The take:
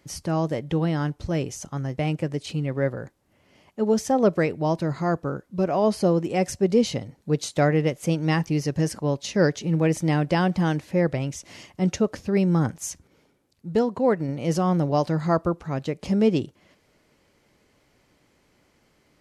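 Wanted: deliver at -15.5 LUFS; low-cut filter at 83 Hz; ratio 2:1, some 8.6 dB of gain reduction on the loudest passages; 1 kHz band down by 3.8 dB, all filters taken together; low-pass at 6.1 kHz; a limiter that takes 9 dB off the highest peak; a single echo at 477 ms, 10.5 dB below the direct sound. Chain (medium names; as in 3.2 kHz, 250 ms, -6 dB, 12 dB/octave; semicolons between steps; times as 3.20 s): high-pass 83 Hz; low-pass 6.1 kHz; peaking EQ 1 kHz -5.5 dB; compression 2:1, threshold -32 dBFS; peak limiter -25 dBFS; delay 477 ms -10.5 dB; trim +19.5 dB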